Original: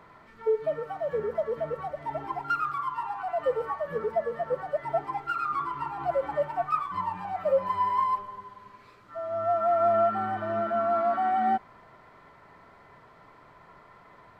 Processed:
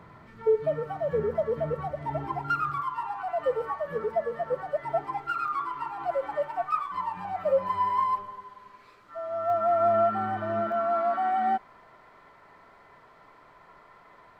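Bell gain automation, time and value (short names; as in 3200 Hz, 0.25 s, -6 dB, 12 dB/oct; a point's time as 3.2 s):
bell 110 Hz 2.5 oct
+10.5 dB
from 2.82 s -0.5 dB
from 5.48 s -10.5 dB
from 7.17 s +0.5 dB
from 8.32 s -7.5 dB
from 9.5 s +2.5 dB
from 10.72 s -6.5 dB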